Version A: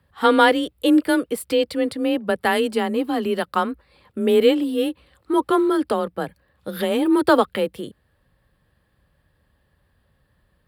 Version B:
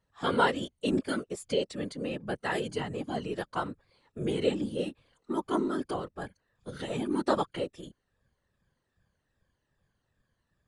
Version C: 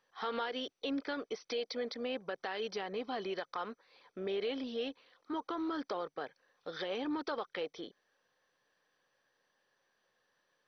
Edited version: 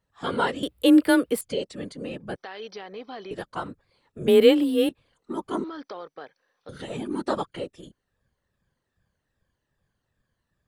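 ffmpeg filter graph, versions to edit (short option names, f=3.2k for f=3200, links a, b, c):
-filter_complex "[0:a]asplit=2[a][b];[2:a]asplit=2[c][d];[1:a]asplit=5[e][f][g][h][i];[e]atrim=end=0.632[j];[a]atrim=start=0.628:end=1.412[k];[f]atrim=start=1.408:end=2.362[l];[c]atrim=start=2.358:end=3.312[m];[g]atrim=start=3.308:end=4.282[n];[b]atrim=start=4.278:end=4.892[o];[h]atrim=start=4.888:end=5.642[p];[d]atrim=start=5.638:end=6.692[q];[i]atrim=start=6.688[r];[j][k]acrossfade=d=0.004:c1=hsin:c2=hsin[s];[s][l]acrossfade=d=0.004:c1=hsin:c2=hsin[t];[t][m]acrossfade=d=0.004:c1=hsin:c2=hsin[u];[u][n]acrossfade=d=0.004:c1=hsin:c2=hsin[v];[v][o]acrossfade=d=0.004:c1=hsin:c2=hsin[w];[w][p]acrossfade=d=0.004:c1=hsin:c2=hsin[x];[x][q]acrossfade=d=0.004:c1=hsin:c2=hsin[y];[y][r]acrossfade=d=0.004:c1=hsin:c2=hsin"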